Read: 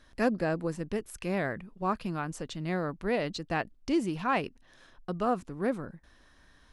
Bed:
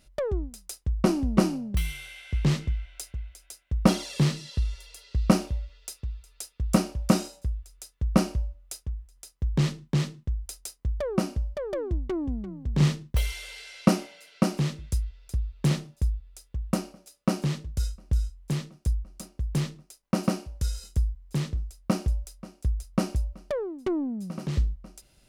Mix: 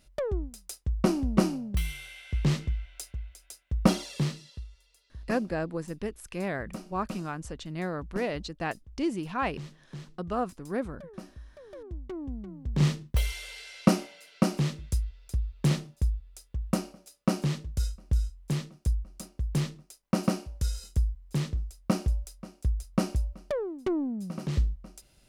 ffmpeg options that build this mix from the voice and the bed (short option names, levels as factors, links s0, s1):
-filter_complex "[0:a]adelay=5100,volume=0.841[s0];[1:a]volume=5.31,afade=t=out:st=3.91:d=0.77:silence=0.16788,afade=t=in:st=11.65:d=1.41:silence=0.149624[s1];[s0][s1]amix=inputs=2:normalize=0"